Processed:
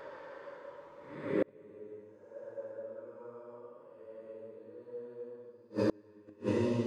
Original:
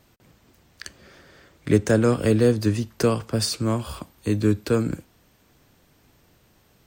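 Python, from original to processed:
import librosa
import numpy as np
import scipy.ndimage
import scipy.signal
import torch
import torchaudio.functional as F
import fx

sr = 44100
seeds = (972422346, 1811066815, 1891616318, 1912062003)

y = fx.double_bandpass(x, sr, hz=720.0, octaves=0.72)
y = fx.paulstretch(y, sr, seeds[0], factor=4.6, window_s=0.25, from_s=1.35)
y = fx.gate_flip(y, sr, shuts_db=-32.0, range_db=-34)
y = F.gain(torch.from_numpy(y), 15.0).numpy()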